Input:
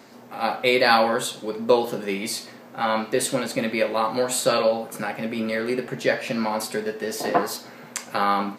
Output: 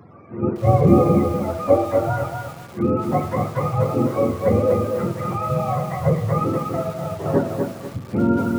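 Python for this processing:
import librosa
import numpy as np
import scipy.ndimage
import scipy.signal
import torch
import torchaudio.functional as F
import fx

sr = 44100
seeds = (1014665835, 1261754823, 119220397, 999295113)

p1 = fx.octave_mirror(x, sr, pivot_hz=530.0)
p2 = p1 + fx.echo_wet_highpass(p1, sr, ms=505, feedback_pct=82, hz=3600.0, wet_db=-17, dry=0)
p3 = fx.rev_schroeder(p2, sr, rt60_s=0.95, comb_ms=26, drr_db=12.5)
p4 = fx.echo_crushed(p3, sr, ms=246, feedback_pct=35, bits=7, wet_db=-4.5)
y = p4 * librosa.db_to_amplitude(3.0)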